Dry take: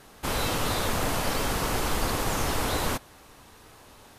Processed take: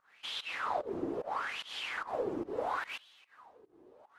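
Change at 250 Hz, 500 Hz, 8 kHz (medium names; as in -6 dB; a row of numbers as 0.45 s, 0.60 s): -9.5 dB, -6.0 dB, -25.0 dB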